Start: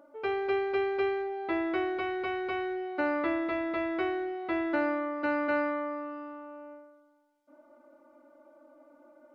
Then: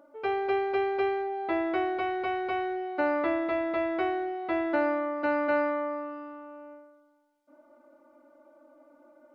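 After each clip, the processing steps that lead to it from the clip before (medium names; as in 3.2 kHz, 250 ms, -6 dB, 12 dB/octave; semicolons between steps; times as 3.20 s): dynamic bell 720 Hz, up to +6 dB, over -44 dBFS, Q 1.9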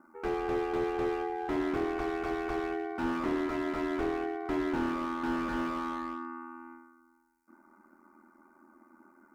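static phaser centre 1.4 kHz, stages 4; ring modulator 41 Hz; slew-rate limiter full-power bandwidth 8.6 Hz; trim +8 dB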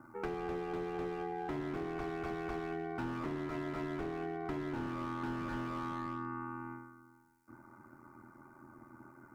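octave divider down 1 oct, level -4 dB; compression 6:1, threshold -39 dBFS, peak gain reduction 12.5 dB; trim +3 dB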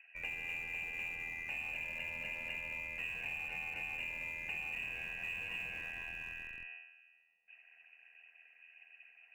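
frequency inversion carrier 2.8 kHz; static phaser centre 350 Hz, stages 6; in parallel at -11.5 dB: Schmitt trigger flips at -39.5 dBFS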